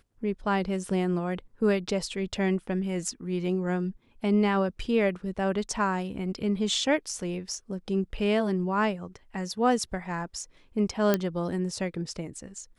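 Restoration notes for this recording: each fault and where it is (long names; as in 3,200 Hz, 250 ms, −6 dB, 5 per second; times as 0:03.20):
0:11.14: click −9 dBFS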